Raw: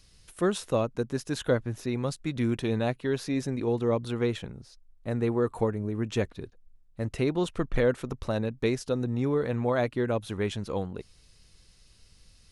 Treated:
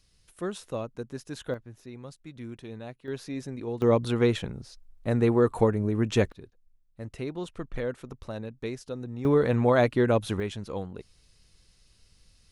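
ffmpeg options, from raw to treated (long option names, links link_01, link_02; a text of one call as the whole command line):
ffmpeg -i in.wav -af "asetnsamples=nb_out_samples=441:pad=0,asendcmd='1.54 volume volume -13dB;3.08 volume volume -6dB;3.82 volume volume 4.5dB;6.32 volume volume -7.5dB;9.25 volume volume 5dB;10.4 volume volume -3dB',volume=-7dB" out.wav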